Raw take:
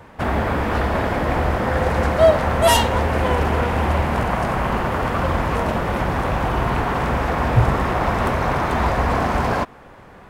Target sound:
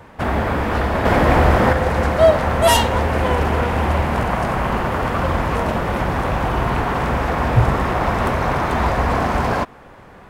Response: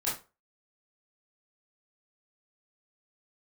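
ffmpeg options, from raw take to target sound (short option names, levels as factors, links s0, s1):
-filter_complex "[0:a]asettb=1/sr,asplit=3[s0][s1][s2];[s0]atrim=end=1.054[s3];[s1]atrim=start=1.05:end=1.73,asetpts=PTS-STARTPTS,afade=t=in:d=0.004:c=qsin,afade=t=out:st=0.676:d=0.004:c=qsin,acontrast=50[s4];[s2]atrim=start=1.726[s5];[s3][s4]acrossfade=d=0.004:c1=hsin:c2=qsin[s6];[s6][s5]acrossfade=d=0.004:c1=qsin:c2=hsin,volume=1.12"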